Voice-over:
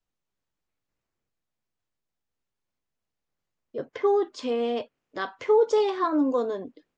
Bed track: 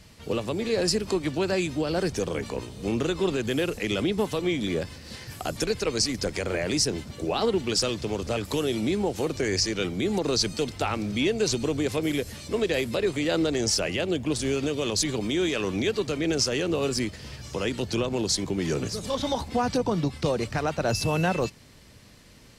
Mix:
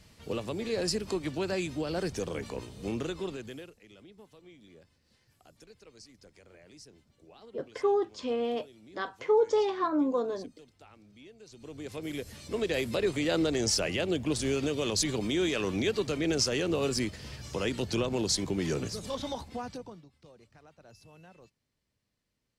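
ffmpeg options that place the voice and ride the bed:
-filter_complex "[0:a]adelay=3800,volume=0.631[s0];[1:a]volume=8.91,afade=t=out:st=2.85:d=0.9:silence=0.0794328,afade=t=in:st=11.51:d=1.47:silence=0.0562341,afade=t=out:st=18.57:d=1.47:silence=0.0446684[s1];[s0][s1]amix=inputs=2:normalize=0"

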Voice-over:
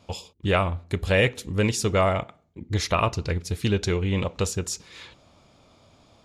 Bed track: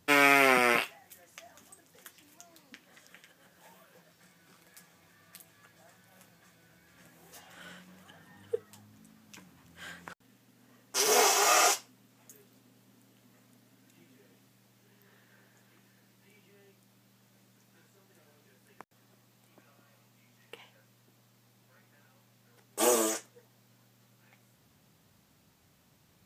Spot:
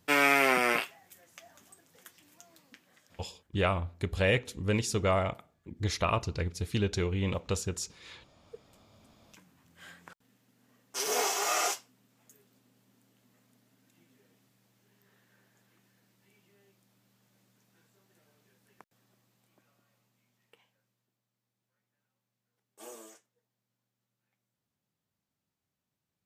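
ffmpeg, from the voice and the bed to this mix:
-filter_complex "[0:a]adelay=3100,volume=0.501[s0];[1:a]volume=4.47,afade=t=out:st=2.54:d=0.97:silence=0.11885,afade=t=in:st=8.35:d=1.07:silence=0.177828,afade=t=out:st=18.75:d=2.44:silence=0.149624[s1];[s0][s1]amix=inputs=2:normalize=0"

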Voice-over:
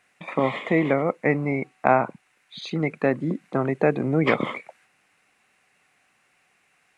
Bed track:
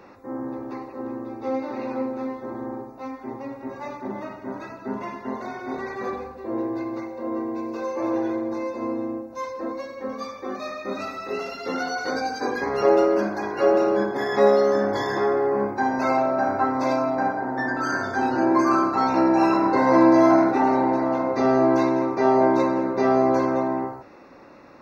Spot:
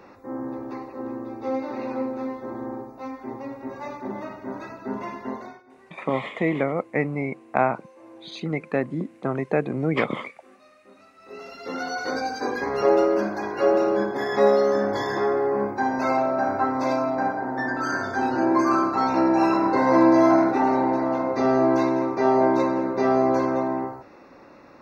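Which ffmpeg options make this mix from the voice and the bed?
-filter_complex "[0:a]adelay=5700,volume=0.75[s0];[1:a]volume=10.6,afade=t=out:st=5.27:d=0.36:silence=0.0841395,afade=t=in:st=11.15:d=0.84:silence=0.0891251[s1];[s0][s1]amix=inputs=2:normalize=0"

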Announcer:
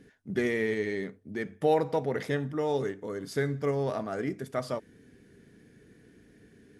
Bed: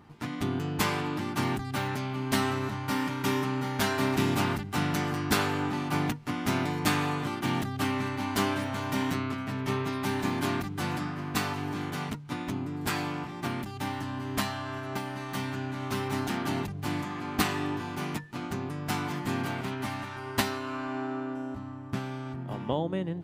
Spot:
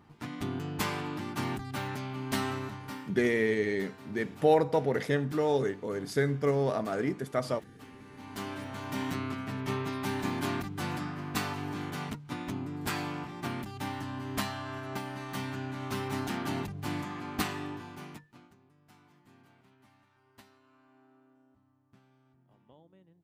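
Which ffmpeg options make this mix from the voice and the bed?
-filter_complex "[0:a]adelay=2800,volume=1.19[s0];[1:a]volume=5.62,afade=t=out:st=2.55:d=0.61:silence=0.125893,afade=t=in:st=8.04:d=1.24:silence=0.105925,afade=t=out:st=17.1:d=1.45:silence=0.0473151[s1];[s0][s1]amix=inputs=2:normalize=0"

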